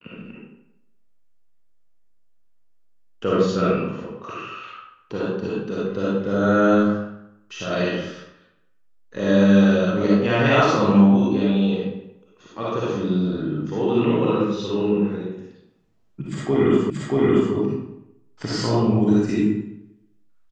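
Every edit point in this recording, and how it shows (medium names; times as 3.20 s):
16.90 s: repeat of the last 0.63 s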